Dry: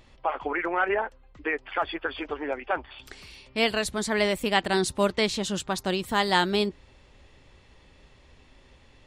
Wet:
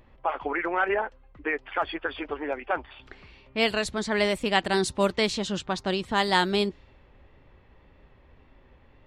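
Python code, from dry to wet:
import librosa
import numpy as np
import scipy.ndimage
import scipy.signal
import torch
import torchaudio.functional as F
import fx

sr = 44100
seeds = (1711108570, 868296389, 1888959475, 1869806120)

y = fx.env_lowpass(x, sr, base_hz=1800.0, full_db=-19.0)
y = fx.wow_flutter(y, sr, seeds[0], rate_hz=2.1, depth_cents=27.0)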